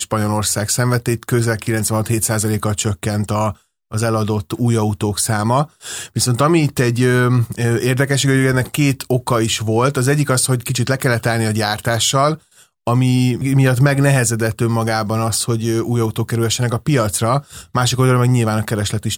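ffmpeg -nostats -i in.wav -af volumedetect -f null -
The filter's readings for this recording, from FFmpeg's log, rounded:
mean_volume: -16.6 dB
max_volume: -2.0 dB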